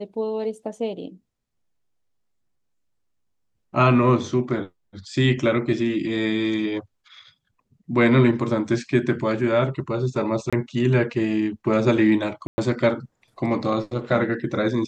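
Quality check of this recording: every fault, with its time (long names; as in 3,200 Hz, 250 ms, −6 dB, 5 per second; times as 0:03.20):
0:10.50–0:10.53: drop-out 26 ms
0:12.47–0:12.58: drop-out 110 ms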